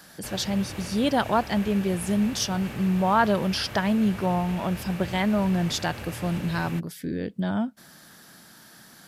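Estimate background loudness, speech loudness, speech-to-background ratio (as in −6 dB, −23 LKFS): −38.0 LKFS, −26.0 LKFS, 12.0 dB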